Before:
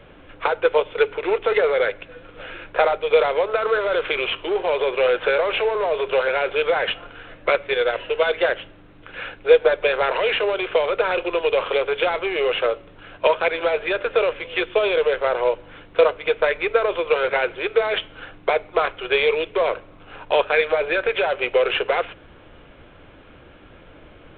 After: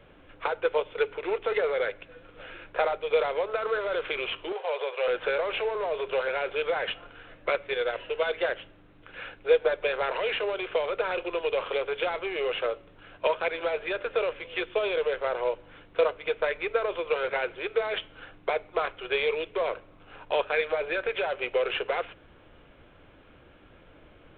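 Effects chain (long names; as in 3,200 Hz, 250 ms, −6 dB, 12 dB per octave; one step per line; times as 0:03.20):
0:04.52–0:05.08: Chebyshev high-pass filter 450 Hz, order 5
level −8 dB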